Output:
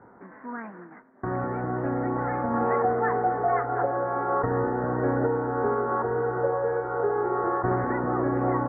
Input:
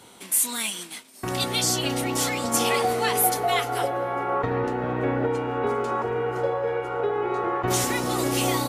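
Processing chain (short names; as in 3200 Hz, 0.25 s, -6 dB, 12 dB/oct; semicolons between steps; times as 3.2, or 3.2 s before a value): steep low-pass 1800 Hz 72 dB/oct; 2.1–2.64 flutter echo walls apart 10.9 m, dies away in 0.51 s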